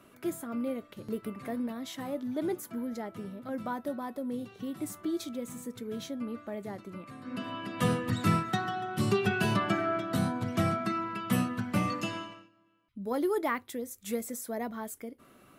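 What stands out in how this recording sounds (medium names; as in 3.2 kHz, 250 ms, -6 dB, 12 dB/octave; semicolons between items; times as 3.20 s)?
noise floor -60 dBFS; spectral tilt -5.5 dB/octave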